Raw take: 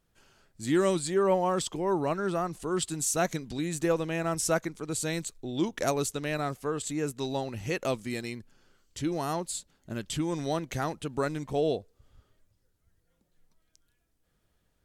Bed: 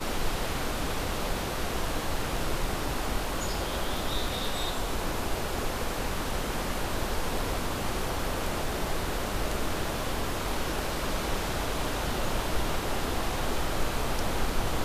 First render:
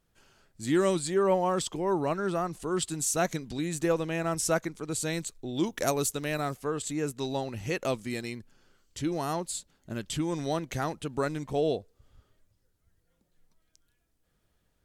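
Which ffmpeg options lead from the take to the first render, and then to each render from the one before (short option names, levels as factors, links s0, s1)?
-filter_complex "[0:a]asettb=1/sr,asplit=3[s0][s1][s2];[s0]atrim=end=5.564[s3];[s1]atrim=start=5.56:end=6.55,asetpts=PTS-STARTPTS,afade=t=in:d=0.004:c=qsin,afade=t=out:st=0.986:d=0.004:c=qsin,highshelf=f=11000:g=12[s4];[s2]atrim=start=6.546[s5];[s3][s4]acrossfade=d=0.004:c1=hsin:c2=qsin[s6];[s6][s5]acrossfade=d=0.004:c1=qsin:c2=hsin"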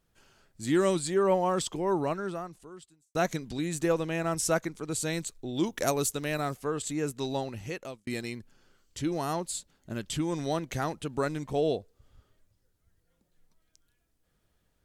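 -filter_complex "[0:a]asplit=3[s0][s1][s2];[s0]atrim=end=3.15,asetpts=PTS-STARTPTS,afade=t=out:st=2.02:d=1.13:c=qua[s3];[s1]atrim=start=3.15:end=8.07,asetpts=PTS-STARTPTS,afade=t=in:d=0.004:c=hsin,afade=t=out:st=4.26:d=0.66[s4];[s2]atrim=start=8.07,asetpts=PTS-STARTPTS,afade=t=in:d=0.004:c=hsin[s5];[s3][s4][s5]concat=n=3:v=0:a=1"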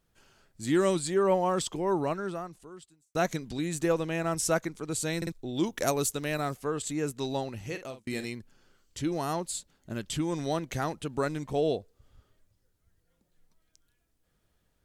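-filter_complex "[0:a]asettb=1/sr,asplit=3[s0][s1][s2];[s0]atrim=end=7.654[s3];[s1]atrim=start=7.65:end=8.25,asetpts=PTS-STARTPTS,afade=t=in:d=0.004:c=qsin,afade=t=out:st=0.596:d=0.004:c=qsin,asplit=2[s4][s5];[s5]adelay=47,volume=0.316[s6];[s4][s6]amix=inputs=2:normalize=0,atrim=end_sample=26460[s7];[s2]atrim=start=8.246[s8];[s3][s7]acrossfade=d=0.004:c1=hsin:c2=qsin[s9];[s9][s8]acrossfade=d=0.004:c1=qsin:c2=hsin,asplit=4[s10][s11][s12][s13];[s10]atrim=end=5.222[s14];[s11]atrim=start=5.168:end=5.222[s15];[s12]atrim=start=5.168:end=5.222[s16];[s13]atrim=start=5.318[s17];[s14][s15]acrossfade=d=0.004:c1=hsin:c2=hsin[s18];[s18][s16]acrossfade=d=0.004:c1=hsin:c2=hsin[s19];[s19][s17]acrossfade=d=0.004:c1=hsin:c2=hsin"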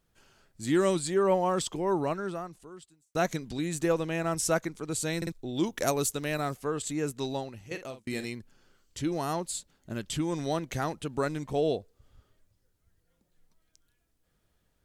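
-filter_complex "[0:a]asplit=2[s0][s1];[s0]atrim=end=7.71,asetpts=PTS-STARTPTS,afade=t=out:st=7.24:d=0.47:silence=0.281838[s2];[s1]atrim=start=7.71,asetpts=PTS-STARTPTS,afade=t=in:d=0.004:c=hsin:silence=0.281838[s3];[s2][s3]concat=n=2:v=0:a=1"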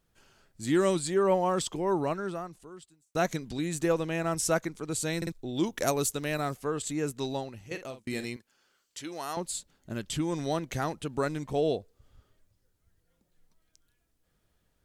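-filter_complex "[0:a]asettb=1/sr,asplit=3[s0][s1][s2];[s0]atrim=end=8.364[s3];[s1]atrim=start=8.36:end=9.37,asetpts=PTS-STARTPTS,afade=t=in:d=0.004:c=qsin,afade=t=out:st=1.006:d=0.004:c=qsin,highpass=f=970:p=1[s4];[s2]atrim=start=9.366[s5];[s3][s4]acrossfade=d=0.004:c1=hsin:c2=qsin[s6];[s6][s5]acrossfade=d=0.004:c1=qsin:c2=hsin"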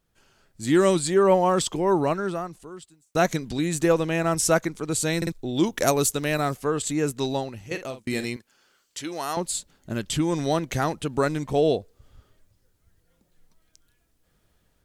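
-af "dynaudnorm=f=380:g=3:m=2.11"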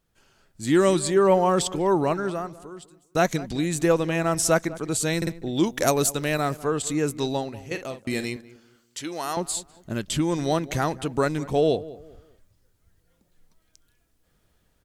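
-filter_complex "[0:a]asplit=2[s0][s1];[s1]adelay=198,lowpass=f=1400:p=1,volume=0.141,asplit=2[s2][s3];[s3]adelay=198,lowpass=f=1400:p=1,volume=0.33,asplit=2[s4][s5];[s5]adelay=198,lowpass=f=1400:p=1,volume=0.33[s6];[s0][s2][s4][s6]amix=inputs=4:normalize=0"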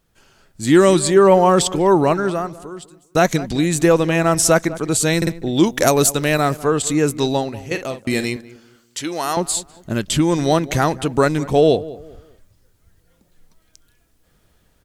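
-af "volume=2.37,alimiter=limit=0.794:level=0:latency=1"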